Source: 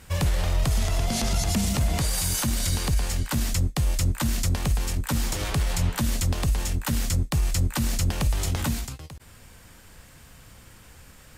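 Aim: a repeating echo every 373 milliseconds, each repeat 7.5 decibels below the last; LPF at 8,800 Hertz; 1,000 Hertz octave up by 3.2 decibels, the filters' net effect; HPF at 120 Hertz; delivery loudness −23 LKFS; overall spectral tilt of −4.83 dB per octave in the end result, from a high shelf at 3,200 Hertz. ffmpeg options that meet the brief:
ffmpeg -i in.wav -af "highpass=120,lowpass=8800,equalizer=frequency=1000:width_type=o:gain=5,highshelf=frequency=3200:gain=-7.5,aecho=1:1:373|746|1119|1492|1865:0.422|0.177|0.0744|0.0312|0.0131,volume=7dB" out.wav

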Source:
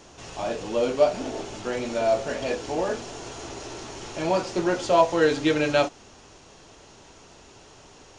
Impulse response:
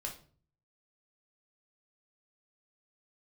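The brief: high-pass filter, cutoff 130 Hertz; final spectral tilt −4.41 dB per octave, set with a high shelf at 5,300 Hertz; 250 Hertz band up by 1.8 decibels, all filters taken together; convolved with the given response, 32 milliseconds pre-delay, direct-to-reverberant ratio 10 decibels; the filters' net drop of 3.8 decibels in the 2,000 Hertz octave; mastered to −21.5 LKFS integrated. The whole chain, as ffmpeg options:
-filter_complex "[0:a]highpass=130,equalizer=frequency=250:width_type=o:gain=3,equalizer=frequency=2000:width_type=o:gain=-4.5,highshelf=frequency=5300:gain=-5.5,asplit=2[link_01][link_02];[1:a]atrim=start_sample=2205,adelay=32[link_03];[link_02][link_03]afir=irnorm=-1:irlink=0,volume=-9.5dB[link_04];[link_01][link_04]amix=inputs=2:normalize=0,volume=3dB"

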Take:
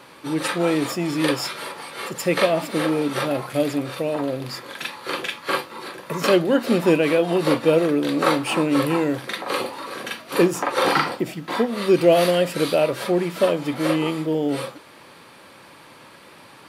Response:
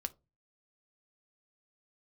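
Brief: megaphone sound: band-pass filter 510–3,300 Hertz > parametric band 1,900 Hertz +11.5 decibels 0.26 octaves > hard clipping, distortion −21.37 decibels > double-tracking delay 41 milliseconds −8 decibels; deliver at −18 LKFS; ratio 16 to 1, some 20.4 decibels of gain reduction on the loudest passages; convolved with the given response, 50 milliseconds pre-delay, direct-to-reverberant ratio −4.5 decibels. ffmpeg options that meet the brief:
-filter_complex "[0:a]acompressor=threshold=-32dB:ratio=16,asplit=2[link_01][link_02];[1:a]atrim=start_sample=2205,adelay=50[link_03];[link_02][link_03]afir=irnorm=-1:irlink=0,volume=5.5dB[link_04];[link_01][link_04]amix=inputs=2:normalize=0,highpass=510,lowpass=3300,equalizer=frequency=1900:width_type=o:width=0.26:gain=11.5,asoftclip=type=hard:threshold=-22dB,asplit=2[link_05][link_06];[link_06]adelay=41,volume=-8dB[link_07];[link_05][link_07]amix=inputs=2:normalize=0,volume=13.5dB"

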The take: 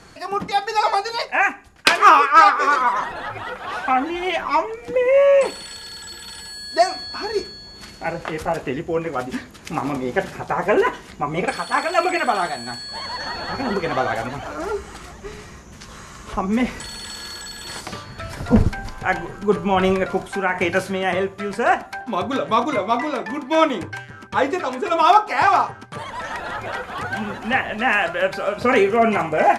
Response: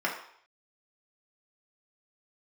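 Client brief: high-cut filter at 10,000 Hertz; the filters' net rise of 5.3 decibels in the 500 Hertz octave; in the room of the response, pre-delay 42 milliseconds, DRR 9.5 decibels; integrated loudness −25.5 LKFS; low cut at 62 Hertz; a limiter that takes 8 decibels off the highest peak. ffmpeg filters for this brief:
-filter_complex "[0:a]highpass=62,lowpass=10000,equalizer=frequency=500:width_type=o:gain=6.5,alimiter=limit=-7dB:level=0:latency=1,asplit=2[link_01][link_02];[1:a]atrim=start_sample=2205,adelay=42[link_03];[link_02][link_03]afir=irnorm=-1:irlink=0,volume=-19.5dB[link_04];[link_01][link_04]amix=inputs=2:normalize=0,volume=-6dB"

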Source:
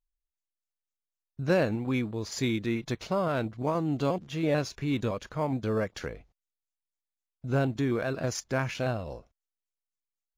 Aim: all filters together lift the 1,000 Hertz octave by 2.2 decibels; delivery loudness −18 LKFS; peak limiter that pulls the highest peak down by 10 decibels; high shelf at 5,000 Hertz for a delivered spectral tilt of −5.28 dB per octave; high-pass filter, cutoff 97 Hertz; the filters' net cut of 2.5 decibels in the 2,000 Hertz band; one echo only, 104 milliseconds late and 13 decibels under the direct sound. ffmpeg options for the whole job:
ffmpeg -i in.wav -af "highpass=97,equalizer=frequency=1000:width_type=o:gain=4,equalizer=frequency=2000:width_type=o:gain=-6,highshelf=frequency=5000:gain=5.5,alimiter=limit=-23.5dB:level=0:latency=1,aecho=1:1:104:0.224,volume=16dB" out.wav

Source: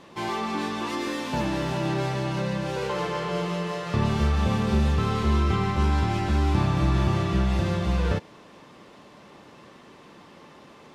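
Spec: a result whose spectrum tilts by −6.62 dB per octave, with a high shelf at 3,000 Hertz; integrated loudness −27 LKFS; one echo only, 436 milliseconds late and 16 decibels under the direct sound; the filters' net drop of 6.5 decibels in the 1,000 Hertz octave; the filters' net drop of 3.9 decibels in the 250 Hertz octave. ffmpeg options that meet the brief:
ffmpeg -i in.wav -af "equalizer=frequency=250:width_type=o:gain=-5.5,equalizer=frequency=1000:width_type=o:gain=-7,highshelf=frequency=3000:gain=-7.5,aecho=1:1:436:0.158,volume=1dB" out.wav

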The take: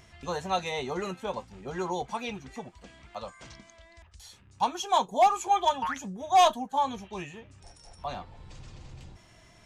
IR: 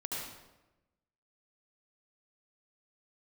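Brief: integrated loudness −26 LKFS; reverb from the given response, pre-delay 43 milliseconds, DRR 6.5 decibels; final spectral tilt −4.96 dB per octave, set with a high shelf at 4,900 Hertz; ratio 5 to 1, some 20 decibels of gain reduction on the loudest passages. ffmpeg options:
-filter_complex "[0:a]highshelf=frequency=4900:gain=-6.5,acompressor=threshold=-40dB:ratio=5,asplit=2[link_01][link_02];[1:a]atrim=start_sample=2205,adelay=43[link_03];[link_02][link_03]afir=irnorm=-1:irlink=0,volume=-9dB[link_04];[link_01][link_04]amix=inputs=2:normalize=0,volume=18dB"

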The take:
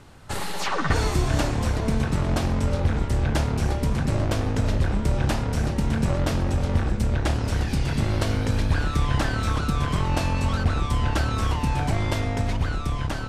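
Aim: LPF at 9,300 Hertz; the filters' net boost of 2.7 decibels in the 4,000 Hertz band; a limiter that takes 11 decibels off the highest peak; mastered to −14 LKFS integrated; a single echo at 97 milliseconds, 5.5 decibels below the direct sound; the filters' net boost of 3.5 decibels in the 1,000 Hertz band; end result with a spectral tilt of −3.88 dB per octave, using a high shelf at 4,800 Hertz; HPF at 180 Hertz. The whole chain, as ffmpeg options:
ffmpeg -i in.wav -af "highpass=180,lowpass=9300,equalizer=frequency=1000:width_type=o:gain=4.5,equalizer=frequency=4000:width_type=o:gain=7.5,highshelf=frequency=4800:gain=-9,alimiter=limit=-20dB:level=0:latency=1,aecho=1:1:97:0.531,volume=16dB" out.wav

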